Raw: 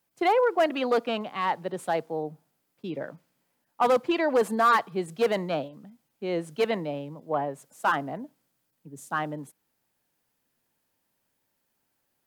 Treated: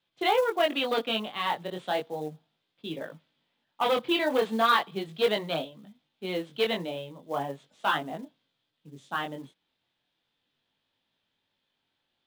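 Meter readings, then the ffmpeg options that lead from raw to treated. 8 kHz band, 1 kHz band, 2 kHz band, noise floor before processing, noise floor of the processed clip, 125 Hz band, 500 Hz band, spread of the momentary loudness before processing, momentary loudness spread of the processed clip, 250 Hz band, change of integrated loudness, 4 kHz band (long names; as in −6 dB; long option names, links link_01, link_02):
−3.5 dB, −2.5 dB, 0.0 dB, −77 dBFS, −80 dBFS, −3.5 dB, −2.5 dB, 15 LU, 15 LU, −2.5 dB, −1.5 dB, +7.5 dB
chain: -af "lowpass=frequency=3500:width_type=q:width=5.1,flanger=delay=18.5:depth=4.6:speed=0.36,acrusher=bits=6:mode=log:mix=0:aa=0.000001"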